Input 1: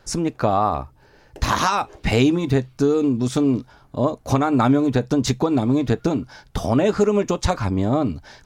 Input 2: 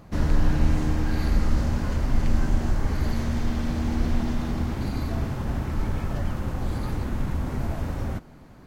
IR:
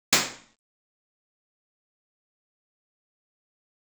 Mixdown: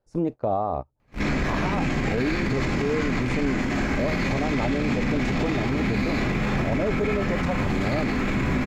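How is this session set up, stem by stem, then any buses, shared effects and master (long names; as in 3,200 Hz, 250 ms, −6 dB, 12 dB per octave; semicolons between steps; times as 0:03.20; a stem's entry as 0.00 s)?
−2.0 dB, 0.00 s, no send, drawn EQ curve 290 Hz 0 dB, 590 Hz +5 dB, 2,400 Hz −22 dB, 4,200 Hz −14 dB
−0.5 dB, 1.00 s, send −7.5 dB, sub-octave generator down 2 octaves, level +2 dB; brickwall limiter −13.5 dBFS, peak gain reduction 7 dB; hard clipping −24 dBFS, distortion −8 dB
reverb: on, RT60 0.45 s, pre-delay 77 ms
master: noise gate −26 dBFS, range −21 dB; parametric band 2,300 Hz +11.5 dB 1.1 octaves; brickwall limiter −16 dBFS, peak gain reduction 13 dB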